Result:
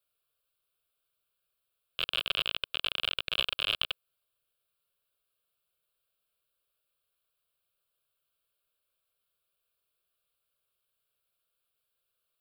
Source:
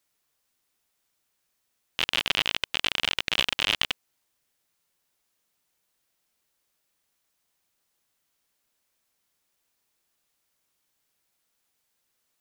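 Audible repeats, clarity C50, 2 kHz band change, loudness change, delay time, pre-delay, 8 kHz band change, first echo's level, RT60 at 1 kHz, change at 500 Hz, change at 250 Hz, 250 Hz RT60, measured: none, none, -7.0 dB, -5.0 dB, none, none, -14.5 dB, none, none, -5.0 dB, -13.5 dB, none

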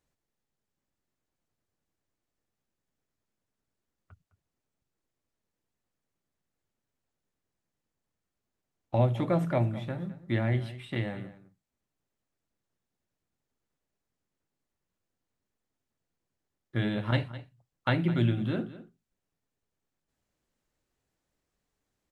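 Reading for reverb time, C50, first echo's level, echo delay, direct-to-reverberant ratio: none, none, -16.0 dB, 0.209 s, none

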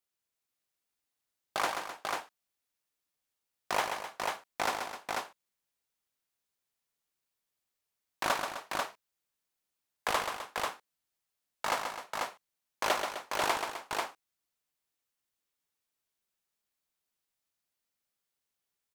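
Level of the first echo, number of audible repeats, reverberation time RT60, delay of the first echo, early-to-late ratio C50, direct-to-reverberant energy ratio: -6.5 dB, 3, none, 0.132 s, none, none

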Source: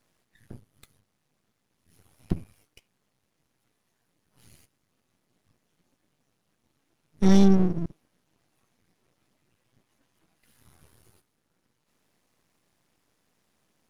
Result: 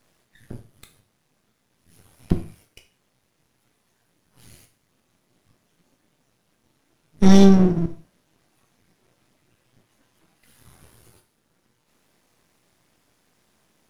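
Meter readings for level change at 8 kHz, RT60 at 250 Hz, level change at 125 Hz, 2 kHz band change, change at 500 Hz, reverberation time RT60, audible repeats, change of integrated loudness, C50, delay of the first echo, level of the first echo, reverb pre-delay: n/a, 0.35 s, +6.0 dB, +7.5 dB, +7.0 dB, 0.40 s, none, +6.0 dB, 12.5 dB, none, none, 15 ms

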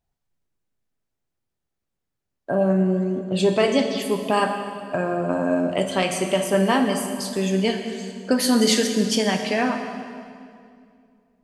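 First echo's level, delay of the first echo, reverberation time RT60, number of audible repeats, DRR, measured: none, none, 2.3 s, none, 5.0 dB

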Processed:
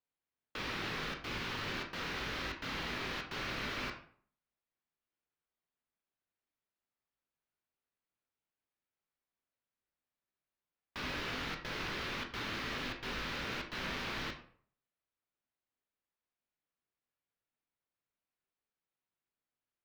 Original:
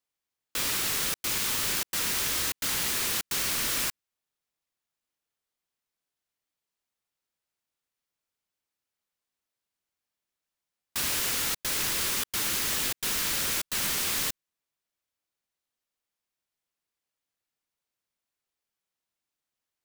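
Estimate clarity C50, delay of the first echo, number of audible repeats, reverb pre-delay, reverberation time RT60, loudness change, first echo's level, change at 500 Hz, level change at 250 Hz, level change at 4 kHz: 8.5 dB, none, none, 13 ms, 0.55 s, -12.5 dB, none, -2.5 dB, -1.5 dB, -10.5 dB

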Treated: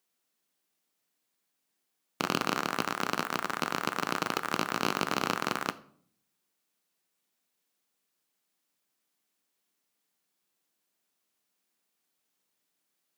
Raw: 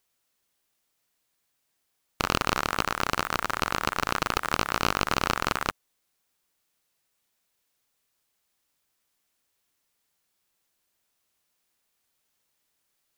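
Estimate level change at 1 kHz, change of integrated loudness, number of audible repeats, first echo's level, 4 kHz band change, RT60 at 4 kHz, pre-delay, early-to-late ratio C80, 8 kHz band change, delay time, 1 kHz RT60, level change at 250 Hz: -4.0 dB, -4.0 dB, none, none, -4.5 dB, 0.40 s, 3 ms, 21.5 dB, -4.5 dB, none, 0.50 s, -0.5 dB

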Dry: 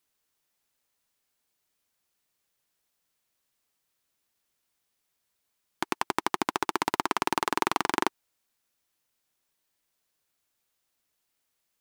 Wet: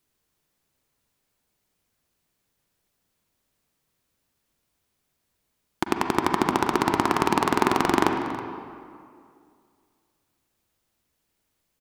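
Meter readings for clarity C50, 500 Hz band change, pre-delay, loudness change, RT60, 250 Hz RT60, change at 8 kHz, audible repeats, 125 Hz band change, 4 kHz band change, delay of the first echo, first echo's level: 4.0 dB, +8.5 dB, 38 ms, +5.5 dB, 2.3 s, 2.3 s, +1.5 dB, 1, +13.5 dB, +2.5 dB, 0.323 s, -17.5 dB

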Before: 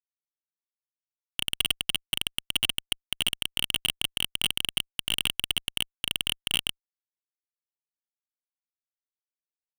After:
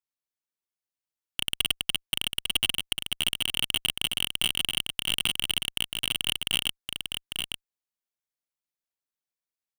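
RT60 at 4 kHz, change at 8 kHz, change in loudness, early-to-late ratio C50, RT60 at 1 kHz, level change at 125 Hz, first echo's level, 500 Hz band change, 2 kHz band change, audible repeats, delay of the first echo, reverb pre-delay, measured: none, +1.0 dB, +0.5 dB, none, none, +1.0 dB, -5.5 dB, +1.0 dB, +1.0 dB, 1, 0.849 s, none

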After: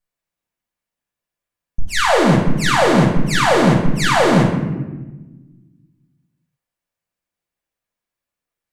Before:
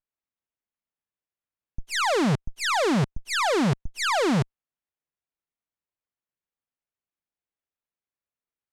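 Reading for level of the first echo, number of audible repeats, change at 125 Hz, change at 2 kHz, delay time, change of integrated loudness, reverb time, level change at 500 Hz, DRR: none, none, +11.0 dB, +9.0 dB, none, +9.0 dB, 1.2 s, +10.0 dB, -5.0 dB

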